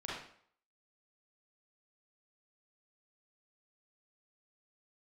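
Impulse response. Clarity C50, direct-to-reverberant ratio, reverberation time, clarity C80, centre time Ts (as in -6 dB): -0.5 dB, -7.0 dB, 0.60 s, 4.5 dB, 62 ms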